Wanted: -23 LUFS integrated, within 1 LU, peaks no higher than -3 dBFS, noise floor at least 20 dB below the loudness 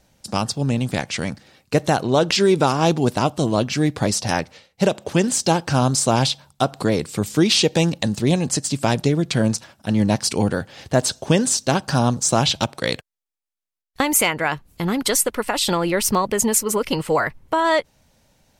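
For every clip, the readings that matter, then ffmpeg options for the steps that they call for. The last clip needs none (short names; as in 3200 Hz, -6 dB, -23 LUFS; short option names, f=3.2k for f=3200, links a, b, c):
loudness -20.0 LUFS; peak -5.0 dBFS; loudness target -23.0 LUFS
-> -af "volume=-3dB"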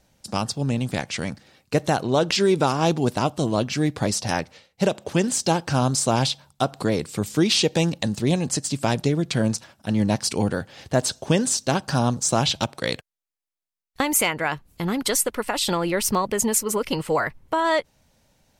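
loudness -23.0 LUFS; peak -8.0 dBFS; noise floor -76 dBFS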